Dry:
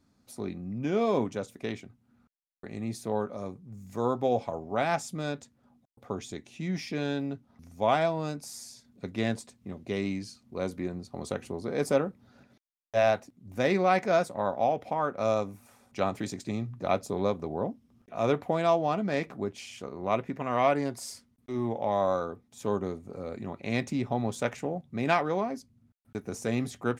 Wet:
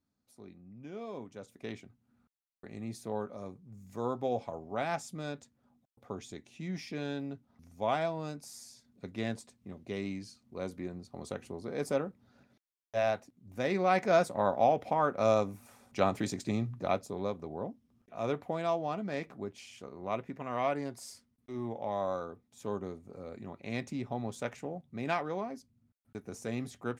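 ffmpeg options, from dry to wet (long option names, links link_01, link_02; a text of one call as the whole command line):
ffmpeg -i in.wav -af "volume=0.5dB,afade=type=in:start_time=1.28:duration=0.46:silence=0.316228,afade=type=in:start_time=13.69:duration=0.62:silence=0.473151,afade=type=out:start_time=16.65:duration=0.42:silence=0.421697" out.wav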